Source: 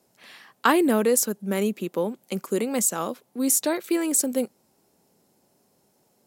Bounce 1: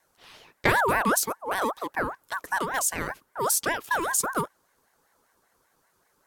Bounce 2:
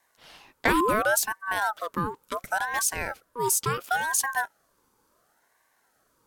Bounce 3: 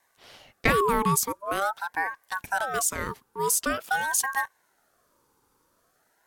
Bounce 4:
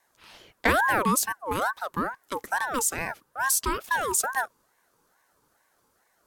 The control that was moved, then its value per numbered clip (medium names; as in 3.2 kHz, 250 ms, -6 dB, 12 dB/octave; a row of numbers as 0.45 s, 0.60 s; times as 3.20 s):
ring modulator with a swept carrier, at: 5.1 Hz, 0.71 Hz, 0.46 Hz, 2.3 Hz